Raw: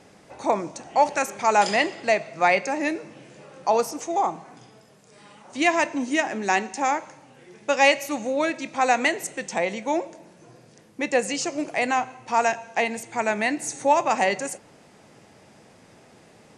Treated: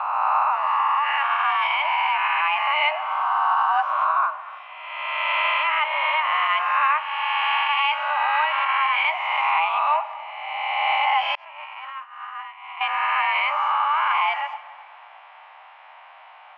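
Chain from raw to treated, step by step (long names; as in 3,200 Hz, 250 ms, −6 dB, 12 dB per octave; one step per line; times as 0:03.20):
peak hold with a rise ahead of every peak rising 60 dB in 1.79 s
single-sideband voice off tune +300 Hz 430–2,800 Hz
in parallel at −2.5 dB: downward compressor 4 to 1, threshold −33 dBFS, peak gain reduction 18 dB
on the sum: brickwall limiter −12 dBFS, peak gain reduction 8.5 dB
speech leveller 0.5 s
on a send: tape delay 295 ms, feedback 43%, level −20 dB, low-pass 2,100 Hz
on the sum: rectangular room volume 3,100 cubic metres, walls mixed, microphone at 0.47 metres
0:11.35–0:12.81: downward expander −10 dBFS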